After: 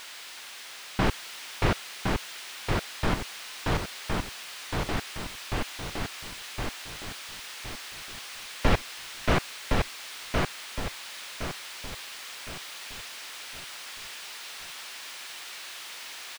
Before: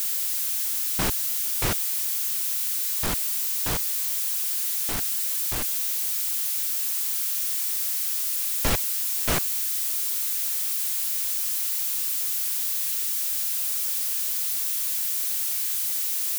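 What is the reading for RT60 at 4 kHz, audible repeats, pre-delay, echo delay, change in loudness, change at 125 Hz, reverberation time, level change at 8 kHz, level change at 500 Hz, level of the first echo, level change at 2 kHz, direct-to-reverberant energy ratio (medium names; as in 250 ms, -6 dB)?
no reverb, 4, no reverb, 1064 ms, -10.5 dB, +5.5 dB, no reverb, -15.0 dB, +5.0 dB, -3.0 dB, +3.0 dB, no reverb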